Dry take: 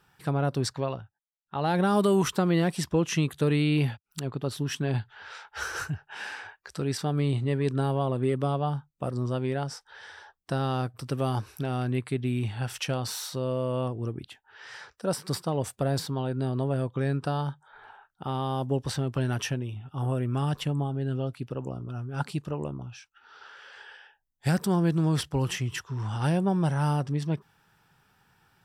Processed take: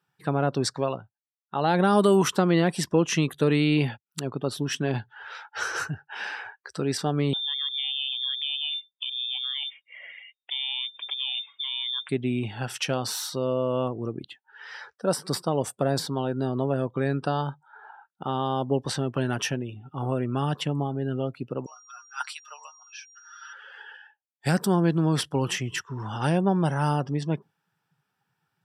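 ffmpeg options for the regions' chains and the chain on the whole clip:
ffmpeg -i in.wav -filter_complex "[0:a]asettb=1/sr,asplit=3[link_01][link_02][link_03];[link_01]atrim=end=7.334[link_04];[link_02]atrim=start=7.33:end=12.09,asetpts=PTS-STARTPTS,afade=type=in:duration=0.004:curve=qsin,afade=type=out:start_time=4.756:duration=0.004:curve=qsin,acompressor=threshold=-36dB:ratio=2:attack=3.2:release=140:knee=1:detection=peak,lowpass=frequency=3100:width_type=q:width=0.5098,lowpass=frequency=3100:width_type=q:width=0.6013,lowpass=frequency=3100:width_type=q:width=0.9,lowpass=frequency=3100:width_type=q:width=2.563,afreqshift=-3700[link_05];[link_03]atrim=start=12.086[link_06];[link_04][link_05]acrossfade=duration=0.004:curve1=hsin:curve2=qsin[link_07];[link_07][link_06]acrossfade=duration=0.004:curve1=qsin:curve2=hsin,asettb=1/sr,asplit=3[link_08][link_09][link_10];[link_08]atrim=end=21.664[link_11];[link_09]atrim=start=21.66:end=23.53,asetpts=PTS-STARTPTS,afade=type=in:duration=0.004:curve=qsin,afade=type=out:start_time=1.866:duration=0.004:curve=qsin,highpass=frequency=1100:width=0.5412,highpass=frequency=1100:width=1.3066,aecho=1:1:6.5:0.88,atrim=end_sample=82467,aeval=exprs='val(0)+0.00178*sin(2*PI*5700*n/s)':channel_layout=same[link_12];[link_10]atrim=start=23.526[link_13];[link_11][link_12]acrossfade=duration=0.004:curve1=hsin:curve2=qsin[link_14];[link_14][link_13]acrossfade=duration=0.004:curve1=qsin:curve2=hsin,afftdn=noise_reduction=17:noise_floor=-50,highpass=170,volume=4dB" out.wav

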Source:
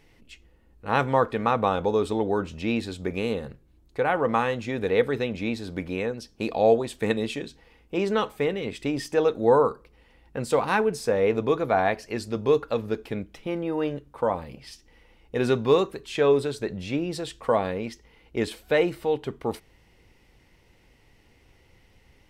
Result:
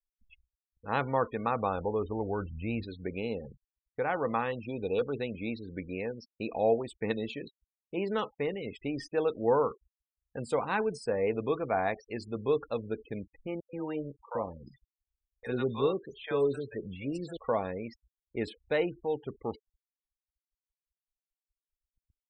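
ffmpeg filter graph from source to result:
ffmpeg -i in.wav -filter_complex "[0:a]asettb=1/sr,asplit=3[link_01][link_02][link_03];[link_01]atrim=end=1.494[link_04];[link_02]atrim=start=1.49:end=2.83,asetpts=PTS-STARTPTS,afade=type=in:duration=0.004:curve=qsin,afade=type=out:start_time=1.336:duration=0.004:curve=qsin,lowpass=3000,asubboost=boost=8.5:cutoff=130[link_05];[link_03]atrim=start=2.826[link_06];[link_04][link_05]acrossfade=duration=0.004:curve1=hsin:curve2=qsin[link_07];[link_07][link_06]acrossfade=duration=0.004:curve1=qsin:curve2=hsin,asettb=1/sr,asplit=3[link_08][link_09][link_10];[link_08]atrim=end=4.524[link_11];[link_09]atrim=start=4.52:end=5.19,asetpts=PTS-STARTPTS,afade=type=in:duration=0.004:curve=qsin,afade=type=out:start_time=0.666:duration=0.004:curve=qsin,asuperstop=centerf=1900:order=12:qfactor=2.2,asoftclip=type=hard:threshold=-15.5dB[link_12];[link_10]atrim=start=5.186[link_13];[link_11][link_12]acrossfade=duration=0.004:curve1=hsin:curve2=qsin[link_14];[link_14][link_13]acrossfade=duration=0.004:curve1=qsin:curve2=hsin,asettb=1/sr,asplit=3[link_15][link_16][link_17];[link_15]atrim=end=13.604[link_18];[link_16]atrim=start=13.6:end=17.37,asetpts=PTS-STARTPTS,afade=type=in:duration=0.004:curve=qsin,afade=type=out:start_time=3.766:duration=0.004:curve=qsin,bandreject=frequency=2600:width=20,acrossover=split=670|4700[link_19][link_20][link_21];[link_20]adelay=90[link_22];[link_19]adelay=130[link_23];[link_23][link_22][link_21]amix=inputs=3:normalize=0,atrim=end_sample=166257[link_24];[link_17]atrim=start=17.366[link_25];[link_18][link_24]acrossfade=duration=0.004:curve1=hsin:curve2=qsin[link_26];[link_26][link_25]acrossfade=duration=0.004:curve1=qsin:curve2=hsin,afftfilt=real='re*gte(hypot(re,im),0.02)':imag='im*gte(hypot(re,im),0.02)':win_size=1024:overlap=0.75,agate=range=-15dB:threshold=-57dB:ratio=16:detection=peak,volume=-7dB" out.wav

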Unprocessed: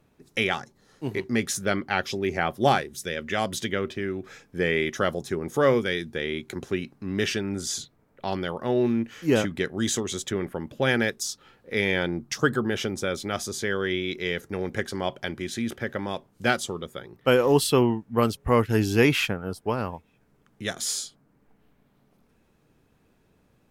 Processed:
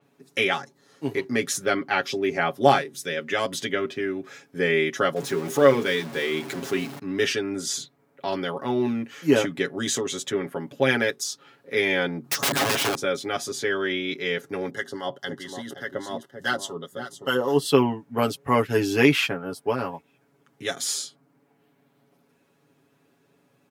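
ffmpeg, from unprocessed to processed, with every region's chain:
ffmpeg -i in.wav -filter_complex "[0:a]asettb=1/sr,asplit=3[link_01][link_02][link_03];[link_01]atrim=end=5.164[link_04];[link_02]atrim=start=5.16:end=6.99,asetpts=PTS-STARTPTS,afade=type=in:duration=0.004:curve=qsin,afade=type=out:start_time=1.826:duration=0.004:curve=qsin,aeval=exprs='val(0)+0.5*0.0224*sgn(val(0))':channel_layout=same,bandreject=frequency=50:width_type=h:width=6,bandreject=frequency=100:width_type=h:width=6,bandreject=frequency=150:width_type=h:width=6,bandreject=frequency=200:width_type=h:width=6,bandreject=frequency=250:width_type=h:width=6,bandreject=frequency=300:width_type=h:width=6,bandreject=frequency=350:width_type=h:width=6,bandreject=frequency=400:width_type=h:width=6,bandreject=frequency=450:width_type=h:width=6,bandreject=frequency=500:width_type=h:width=6[link_05];[link_03]atrim=start=6.986[link_06];[link_04][link_05]acrossfade=duration=0.004:curve1=hsin:curve2=qsin[link_07];[link_07][link_06]acrossfade=duration=0.004:curve1=qsin:curve2=hsin,asettb=1/sr,asplit=3[link_08][link_09][link_10];[link_08]atrim=end=12.244[link_11];[link_09]atrim=start=12.24:end=12.95,asetpts=PTS-STARTPTS,afade=type=in:duration=0.004:curve=qsin,afade=type=out:start_time=0.706:duration=0.004:curve=qsin,acontrast=59,aeval=exprs='(mod(8.91*val(0)+1,2)-1)/8.91':channel_layout=same[link_12];[link_10]atrim=start=12.946[link_13];[link_11][link_12]acrossfade=duration=0.004:curve1=hsin:curve2=qsin[link_14];[link_14][link_13]acrossfade=duration=0.004:curve1=qsin:curve2=hsin,asettb=1/sr,asplit=3[link_15][link_16][link_17];[link_15]atrim=end=14.704[link_18];[link_16]atrim=start=14.7:end=17.72,asetpts=PTS-STARTPTS,afade=type=in:duration=0.004:curve=qsin,afade=type=out:start_time=3.016:duration=0.004:curve=qsin,aecho=1:1:520:0.316,atrim=end_sample=133182,acrossover=split=1000[link_19][link_20];[link_19]aeval=exprs='val(0)*(1-0.7/2+0.7/2*cos(2*PI*4.8*n/s))':channel_layout=same[link_21];[link_20]aeval=exprs='val(0)*(1-0.7/2-0.7/2*cos(2*PI*4.8*n/s))':channel_layout=same[link_22];[link_21][link_22]amix=inputs=2:normalize=0,asuperstop=centerf=2400:order=8:qfactor=3.9[link_23];[link_17]atrim=start=17.716[link_24];[link_18][link_23]acrossfade=duration=0.004:curve1=hsin:curve2=qsin[link_25];[link_25][link_24]acrossfade=duration=0.004:curve1=qsin:curve2=hsin,highpass=180,aecho=1:1:7.2:0.83,adynamicequalizer=threshold=0.00891:dfrequency=5600:dqfactor=0.7:tfrequency=5600:tqfactor=0.7:attack=5:release=100:ratio=0.375:range=2:mode=cutabove:tftype=highshelf" out.wav

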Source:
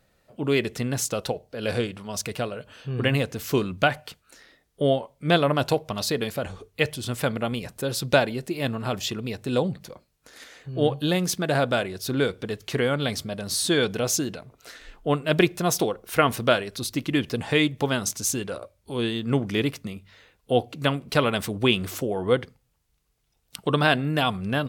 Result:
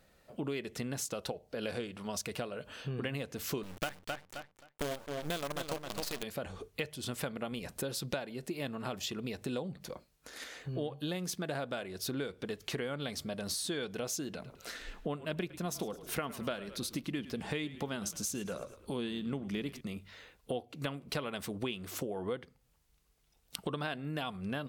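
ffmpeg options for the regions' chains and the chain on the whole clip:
ffmpeg -i in.wav -filter_complex "[0:a]asettb=1/sr,asplit=3[link_01][link_02][link_03];[link_01]atrim=end=3.634[link_04];[link_02]atrim=start=3.63:end=6.23,asetpts=PTS-STARTPTS,afade=type=in:duration=0.004:curve=qsin,afade=type=out:start_time=2.596:duration=0.004:curve=qsin,equalizer=frequency=5100:width=0.76:gain=3,acrusher=bits=4:dc=4:mix=0:aa=0.000001,asplit=2[link_05][link_06];[link_06]adelay=263,lowpass=frequency=4300:poles=1,volume=-8dB,asplit=2[link_07][link_08];[link_08]adelay=263,lowpass=frequency=4300:poles=1,volume=0.16,asplit=2[link_09][link_10];[link_10]adelay=263,lowpass=frequency=4300:poles=1,volume=0.16[link_11];[link_05][link_07][link_09][link_11]amix=inputs=4:normalize=0,atrim=end_sample=114660[link_12];[link_03]atrim=start=6.226[link_13];[link_04][link_12]acrossfade=duration=0.004:curve1=hsin:curve2=qsin[link_14];[link_14][link_13]acrossfade=duration=0.004:curve1=qsin:curve2=hsin,asettb=1/sr,asplit=3[link_15][link_16][link_17];[link_15]atrim=end=14.334[link_18];[link_16]atrim=start=14.33:end=19.81,asetpts=PTS-STARTPTS,afade=type=in:duration=0.004:curve=qsin,afade=type=out:start_time=5.476:duration=0.004:curve=qsin,equalizer=frequency=200:width_type=o:width=0.41:gain=7,asplit=5[link_19][link_20][link_21][link_22][link_23];[link_20]adelay=107,afreqshift=-37,volume=-18dB[link_24];[link_21]adelay=214,afreqshift=-74,volume=-25.1dB[link_25];[link_22]adelay=321,afreqshift=-111,volume=-32.3dB[link_26];[link_23]adelay=428,afreqshift=-148,volume=-39.4dB[link_27];[link_19][link_24][link_25][link_26][link_27]amix=inputs=5:normalize=0,atrim=end_sample=241668[link_28];[link_17]atrim=start=19.806[link_29];[link_18][link_28]acrossfade=duration=0.004:curve1=hsin:curve2=qsin[link_30];[link_30][link_29]acrossfade=duration=0.004:curve1=qsin:curve2=hsin,equalizer=frequency=110:width_type=o:width=0.34:gain=-8.5,acompressor=threshold=-35dB:ratio=6" out.wav

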